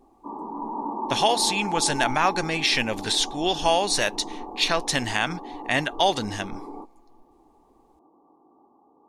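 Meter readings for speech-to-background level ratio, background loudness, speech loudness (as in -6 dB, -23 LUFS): 11.0 dB, -34.5 LUFS, -23.5 LUFS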